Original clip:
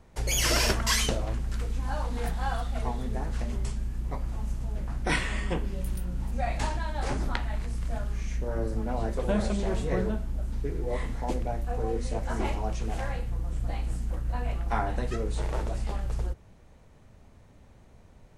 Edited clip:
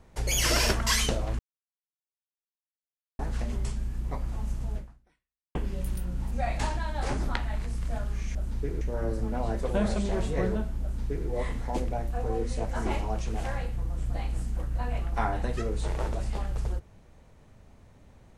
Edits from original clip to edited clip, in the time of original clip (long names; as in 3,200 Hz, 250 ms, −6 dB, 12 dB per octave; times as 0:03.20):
0:01.39–0:03.19: silence
0:04.76–0:05.55: fade out exponential
0:10.36–0:10.82: duplicate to 0:08.35